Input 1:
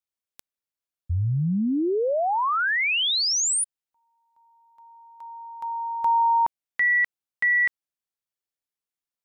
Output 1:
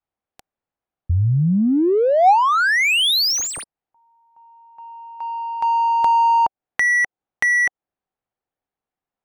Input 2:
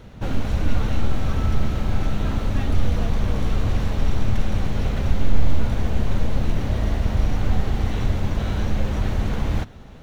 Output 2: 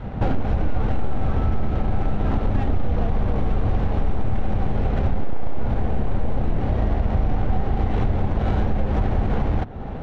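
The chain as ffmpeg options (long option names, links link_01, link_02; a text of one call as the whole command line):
ffmpeg -i in.wav -af "apsyclip=12dB,adynamicequalizer=threshold=0.0282:dfrequency=420:dqfactor=1.5:tfrequency=420:tqfactor=1.5:attack=5:release=100:ratio=0.417:range=1.5:mode=boostabove:tftype=bell,acompressor=threshold=-14dB:ratio=16:attack=4.9:release=290:knee=6:detection=rms,equalizer=frequency=770:width=5.1:gain=7,adynamicsmooth=sensitivity=1.5:basefreq=1600" out.wav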